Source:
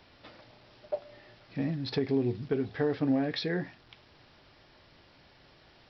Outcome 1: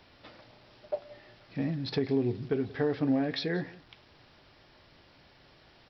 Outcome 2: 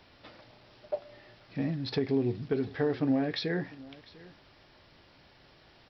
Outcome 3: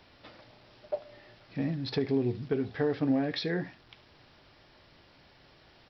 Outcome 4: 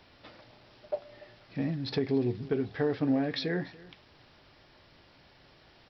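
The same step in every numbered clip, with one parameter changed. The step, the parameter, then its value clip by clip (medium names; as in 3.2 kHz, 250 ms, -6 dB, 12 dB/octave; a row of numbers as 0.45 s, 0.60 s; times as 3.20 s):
delay, time: 180 ms, 699 ms, 72 ms, 288 ms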